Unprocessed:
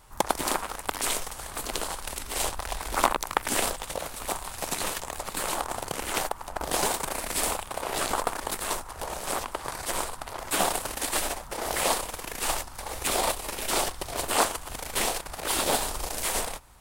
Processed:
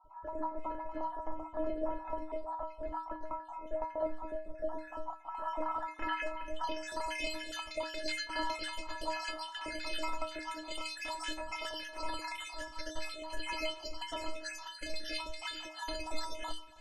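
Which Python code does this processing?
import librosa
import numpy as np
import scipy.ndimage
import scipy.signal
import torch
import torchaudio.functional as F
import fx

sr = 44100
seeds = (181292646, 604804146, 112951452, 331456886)

p1 = fx.spec_dropout(x, sr, seeds[0], share_pct=56)
p2 = fx.over_compress(p1, sr, threshold_db=-35.0, ratio=-0.5)
p3 = fx.notch(p2, sr, hz=3700.0, q=5.2)
p4 = fx.stiff_resonator(p3, sr, f0_hz=310.0, decay_s=0.39, stiffness=0.008)
p5 = p4 + fx.echo_single(p4, sr, ms=281, db=-19.5, dry=0)
p6 = fx.filter_sweep_lowpass(p5, sr, from_hz=830.0, to_hz=4000.0, start_s=5.24, end_s=6.81, q=1.8)
y = p6 * 10.0 ** (13.5 / 20.0)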